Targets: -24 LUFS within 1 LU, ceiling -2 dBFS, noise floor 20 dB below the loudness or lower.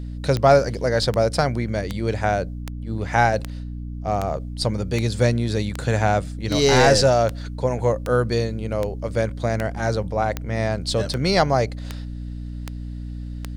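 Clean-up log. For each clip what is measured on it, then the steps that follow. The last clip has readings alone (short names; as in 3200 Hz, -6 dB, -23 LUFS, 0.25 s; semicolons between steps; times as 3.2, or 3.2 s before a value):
clicks 18; hum 60 Hz; harmonics up to 300 Hz; hum level -29 dBFS; loudness -21.5 LUFS; peak -2.5 dBFS; loudness target -24.0 LUFS
-> de-click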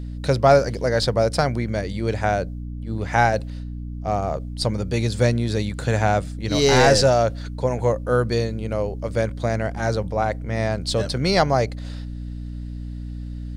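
clicks 0; hum 60 Hz; harmonics up to 300 Hz; hum level -29 dBFS
-> notches 60/120/180/240/300 Hz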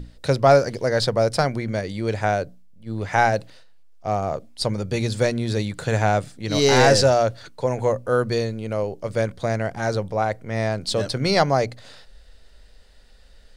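hum none; loudness -22.0 LUFS; peak -1.5 dBFS; loudness target -24.0 LUFS
-> gain -2 dB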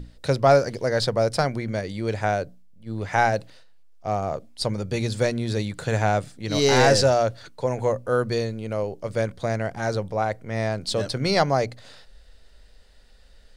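loudness -24.0 LUFS; peak -3.5 dBFS; noise floor -51 dBFS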